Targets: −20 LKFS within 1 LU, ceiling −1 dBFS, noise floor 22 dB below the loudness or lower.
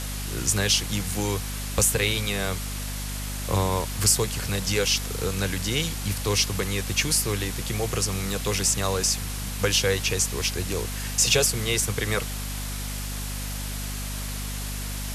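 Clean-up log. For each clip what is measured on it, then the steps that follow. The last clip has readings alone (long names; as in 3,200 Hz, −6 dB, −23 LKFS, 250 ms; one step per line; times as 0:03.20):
mains hum 50 Hz; hum harmonics up to 250 Hz; level of the hum −30 dBFS; background noise floor −32 dBFS; target noise floor −47 dBFS; integrated loudness −25.0 LKFS; sample peak −7.5 dBFS; target loudness −20.0 LKFS
→ hum removal 50 Hz, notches 5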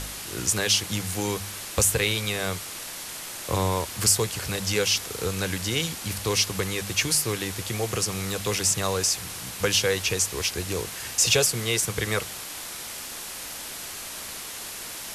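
mains hum none found; background noise floor −37 dBFS; target noise floor −48 dBFS
→ noise reduction from a noise print 11 dB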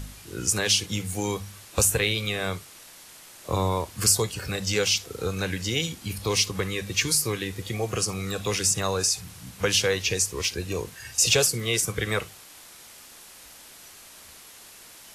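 background noise floor −48 dBFS; integrated loudness −25.0 LKFS; sample peak −7.5 dBFS; target loudness −20.0 LKFS
→ level +5 dB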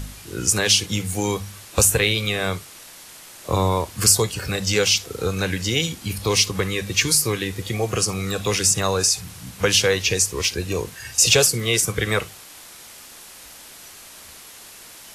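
integrated loudness −20.0 LKFS; sample peak −2.5 dBFS; background noise floor −43 dBFS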